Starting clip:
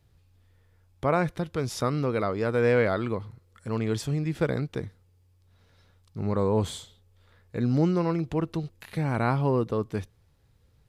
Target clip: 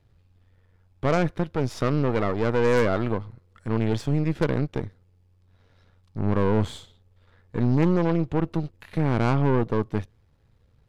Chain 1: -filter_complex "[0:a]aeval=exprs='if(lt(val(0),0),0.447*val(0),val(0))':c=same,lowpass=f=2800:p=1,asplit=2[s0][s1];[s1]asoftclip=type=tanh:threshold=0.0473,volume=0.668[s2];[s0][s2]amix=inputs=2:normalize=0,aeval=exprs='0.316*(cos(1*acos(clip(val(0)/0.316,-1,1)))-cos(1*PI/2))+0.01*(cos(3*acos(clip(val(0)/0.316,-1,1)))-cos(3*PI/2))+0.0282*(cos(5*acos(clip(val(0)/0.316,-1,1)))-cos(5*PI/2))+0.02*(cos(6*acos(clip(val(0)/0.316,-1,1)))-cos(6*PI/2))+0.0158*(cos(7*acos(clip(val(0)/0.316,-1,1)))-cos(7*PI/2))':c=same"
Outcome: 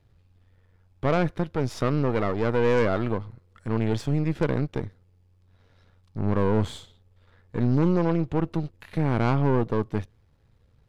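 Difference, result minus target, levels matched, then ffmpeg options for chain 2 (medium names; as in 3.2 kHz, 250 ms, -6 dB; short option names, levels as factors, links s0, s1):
saturation: distortion +7 dB
-filter_complex "[0:a]aeval=exprs='if(lt(val(0),0),0.447*val(0),val(0))':c=same,lowpass=f=2800:p=1,asplit=2[s0][s1];[s1]asoftclip=type=tanh:threshold=0.106,volume=0.668[s2];[s0][s2]amix=inputs=2:normalize=0,aeval=exprs='0.316*(cos(1*acos(clip(val(0)/0.316,-1,1)))-cos(1*PI/2))+0.01*(cos(3*acos(clip(val(0)/0.316,-1,1)))-cos(3*PI/2))+0.0282*(cos(5*acos(clip(val(0)/0.316,-1,1)))-cos(5*PI/2))+0.02*(cos(6*acos(clip(val(0)/0.316,-1,1)))-cos(6*PI/2))+0.0158*(cos(7*acos(clip(val(0)/0.316,-1,1)))-cos(7*PI/2))':c=same"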